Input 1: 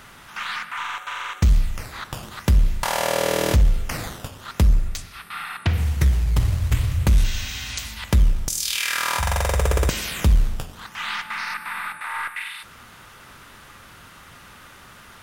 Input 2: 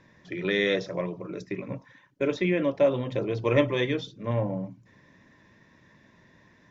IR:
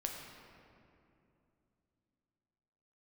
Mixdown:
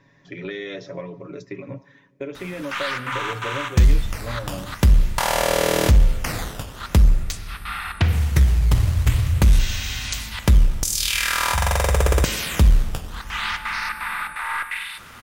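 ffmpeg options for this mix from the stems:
-filter_complex "[0:a]adelay=2350,volume=1dB,asplit=2[link_01][link_02];[link_02]volume=-14.5dB[link_03];[1:a]aecho=1:1:7.2:0.61,acompressor=threshold=-27dB:ratio=10,volume=-1.5dB,asplit=2[link_04][link_05];[link_05]volume=-20.5dB[link_06];[2:a]atrim=start_sample=2205[link_07];[link_03][link_06]amix=inputs=2:normalize=0[link_08];[link_08][link_07]afir=irnorm=-1:irlink=0[link_09];[link_01][link_04][link_09]amix=inputs=3:normalize=0"

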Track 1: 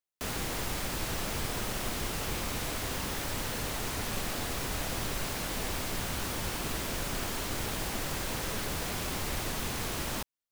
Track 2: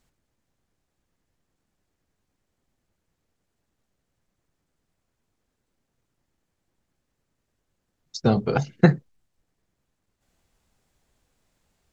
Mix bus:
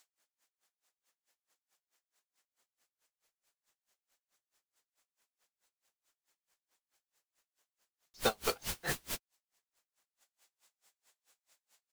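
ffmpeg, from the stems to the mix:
ffmpeg -i stem1.wav -i stem2.wav -filter_complex "[0:a]highshelf=frequency=2100:gain=10,adelay=2250,volume=-6dB[link_01];[1:a]highpass=720,highshelf=frequency=3200:gain=8.5,asoftclip=type=tanh:threshold=-21dB,volume=2.5dB,asplit=2[link_02][link_03];[link_03]apad=whole_len=562871[link_04];[link_01][link_04]sidechaingate=range=-59dB:threshold=-60dB:ratio=16:detection=peak[link_05];[link_05][link_02]amix=inputs=2:normalize=0,aeval=exprs='val(0)*pow(10,-34*(0.5-0.5*cos(2*PI*4.6*n/s))/20)':channel_layout=same" out.wav

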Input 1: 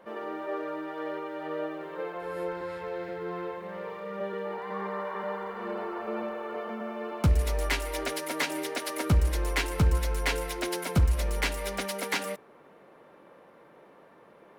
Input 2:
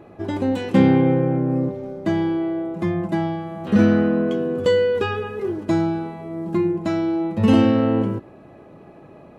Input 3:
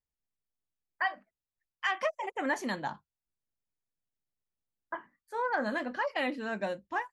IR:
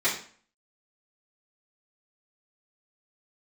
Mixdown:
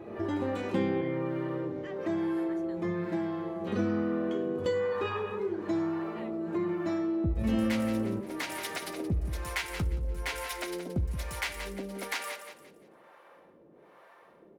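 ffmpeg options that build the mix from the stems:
-filter_complex "[0:a]acrossover=split=530[link_01][link_02];[link_01]aeval=exprs='val(0)*(1-1/2+1/2*cos(2*PI*1.1*n/s))':channel_layout=same[link_03];[link_02]aeval=exprs='val(0)*(1-1/2-1/2*cos(2*PI*1.1*n/s))':channel_layout=same[link_04];[link_03][link_04]amix=inputs=2:normalize=0,volume=1.5dB,asplit=3[link_05][link_06][link_07];[link_06]volume=-20dB[link_08];[link_07]volume=-11dB[link_09];[1:a]volume=-5.5dB,asplit=2[link_10][link_11];[link_11]volume=-10.5dB[link_12];[2:a]volume=-17dB,asplit=2[link_13][link_14];[link_14]apad=whole_len=413842[link_15];[link_10][link_15]sidechaincompress=threshold=-55dB:ratio=8:attack=16:release=1400[link_16];[3:a]atrim=start_sample=2205[link_17];[link_08][link_12]amix=inputs=2:normalize=0[link_18];[link_18][link_17]afir=irnorm=-1:irlink=0[link_19];[link_09]aecho=0:1:174|348|522|696:1|0.31|0.0961|0.0298[link_20];[link_05][link_16][link_13][link_19][link_20]amix=inputs=5:normalize=0,acompressor=threshold=-34dB:ratio=2"

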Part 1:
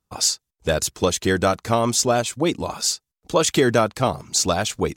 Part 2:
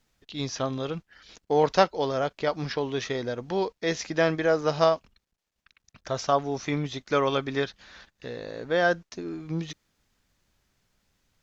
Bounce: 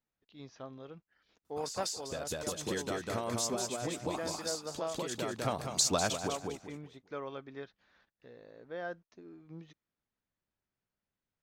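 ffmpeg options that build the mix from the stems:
ffmpeg -i stem1.wav -i stem2.wav -filter_complex "[0:a]acompressor=threshold=-27dB:ratio=16,adelay=1450,volume=2dB,asplit=2[link_01][link_02];[link_02]volume=-10dB[link_03];[1:a]lowpass=frequency=1800:poles=1,volume=-16dB,asplit=2[link_04][link_05];[link_05]apad=whole_len=283088[link_06];[link_01][link_06]sidechaincompress=threshold=-49dB:ratio=10:attack=33:release=660[link_07];[link_03]aecho=0:1:198|396|594|792:1|0.3|0.09|0.027[link_08];[link_07][link_04][link_08]amix=inputs=3:normalize=0,lowshelf=frequency=75:gain=-11" out.wav

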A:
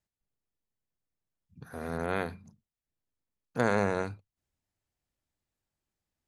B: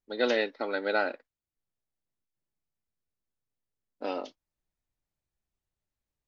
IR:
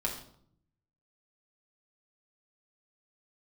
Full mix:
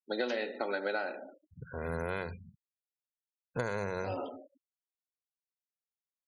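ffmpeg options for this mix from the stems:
-filter_complex "[0:a]lowshelf=frequency=130:gain=4.5,aecho=1:1:2:0.43,adynamicequalizer=threshold=0.00631:dfrequency=2100:dqfactor=0.7:tfrequency=2100:tqfactor=0.7:attack=5:release=100:ratio=0.375:range=2:mode=boostabove:tftype=highshelf,volume=-1dB,asplit=3[link_01][link_02][link_03];[link_02]volume=-22dB[link_04];[1:a]highpass=160,volume=2.5dB,asplit=2[link_05][link_06];[link_06]volume=-9dB[link_07];[link_03]apad=whole_len=276662[link_08];[link_05][link_08]sidechaincompress=threshold=-45dB:ratio=8:attack=16:release=1290[link_09];[2:a]atrim=start_sample=2205[link_10];[link_04][link_07]amix=inputs=2:normalize=0[link_11];[link_11][link_10]afir=irnorm=-1:irlink=0[link_12];[link_01][link_09][link_12]amix=inputs=3:normalize=0,afftfilt=real='re*gte(hypot(re,im),0.00631)':imag='im*gte(hypot(re,im),0.00631)':win_size=1024:overlap=0.75,bandreject=frequency=3600:width=24,acompressor=threshold=-30dB:ratio=10"

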